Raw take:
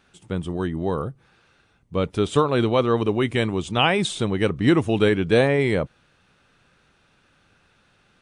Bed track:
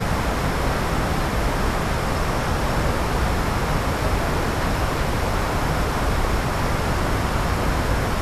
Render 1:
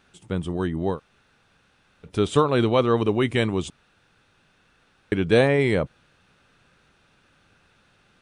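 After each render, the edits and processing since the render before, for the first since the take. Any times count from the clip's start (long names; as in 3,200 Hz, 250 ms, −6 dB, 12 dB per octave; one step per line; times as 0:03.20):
0:00.95–0:02.08: fill with room tone, crossfade 0.10 s
0:03.70–0:05.12: fill with room tone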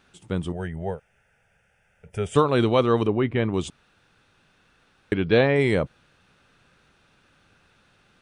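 0:00.52–0:02.35: phaser with its sweep stopped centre 1,100 Hz, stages 6
0:03.07–0:03.54: high-frequency loss of the air 460 metres
0:05.13–0:05.56: elliptic low-pass filter 5,100 Hz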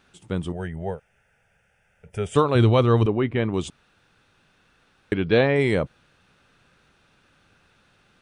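0:02.55–0:03.06: parametric band 97 Hz +14 dB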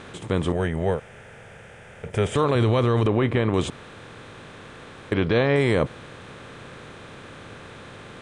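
compressor on every frequency bin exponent 0.6
brickwall limiter −10 dBFS, peak gain reduction 7 dB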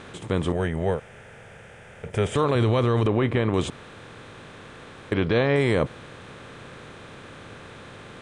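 level −1 dB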